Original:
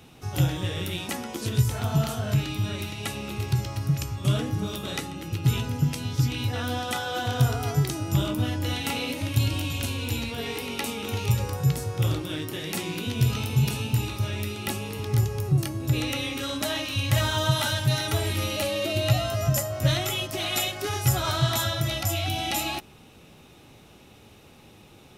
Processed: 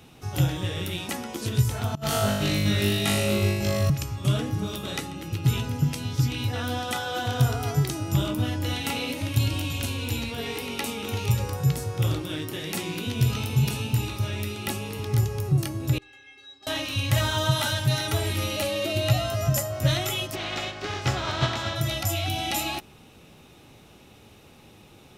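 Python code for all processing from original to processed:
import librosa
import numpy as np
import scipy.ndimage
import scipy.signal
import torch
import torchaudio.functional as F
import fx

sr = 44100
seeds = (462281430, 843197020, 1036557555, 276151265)

y = fx.chain(x, sr, fx.over_compress(threshold_db=-29.0, ratio=-0.5),
    fx.room_flutter(wall_m=3.4, rt60_s=1.1), at=(1.95, 3.9))
y = fx.chain(y, sr, fx.lowpass(hz=4900.0, slope=12),
    fx.stiff_resonator(f0_hz=390.0, decay_s=0.49, stiffness=0.008), at=(15.98, 16.67))
y = fx.spec_flatten(y, sr, power=0.6, at=(20.34, 21.75), fade=0.02)
y = fx.air_absorb(y, sr, metres=170.0, at=(20.34, 21.75), fade=0.02)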